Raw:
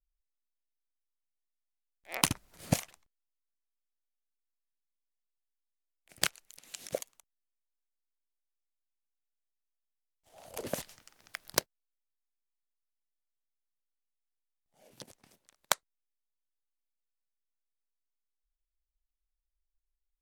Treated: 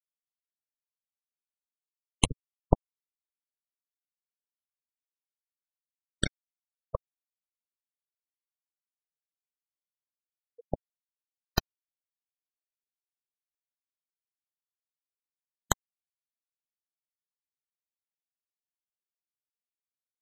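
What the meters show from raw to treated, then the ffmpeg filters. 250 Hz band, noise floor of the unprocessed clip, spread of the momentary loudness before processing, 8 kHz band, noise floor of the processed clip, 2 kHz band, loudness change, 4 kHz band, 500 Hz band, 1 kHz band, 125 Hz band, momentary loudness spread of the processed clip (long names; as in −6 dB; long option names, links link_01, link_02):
+3.5 dB, below −85 dBFS, 22 LU, −2.0 dB, below −85 dBFS, −2.0 dB, +1.0 dB, −0.5 dB, +2.5 dB, +2.0 dB, +5.0 dB, 12 LU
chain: -af "aeval=exprs='0.668*(cos(1*acos(clip(val(0)/0.668,-1,1)))-cos(1*PI/2))+0.0531*(cos(3*acos(clip(val(0)/0.668,-1,1)))-cos(3*PI/2))+0.237*(cos(6*acos(clip(val(0)/0.668,-1,1)))-cos(6*PI/2))':channel_layout=same,afftfilt=real='re*gte(hypot(re,im),0.0891)':imag='im*gte(hypot(re,im),0.0891)':win_size=1024:overlap=0.75,volume=2dB"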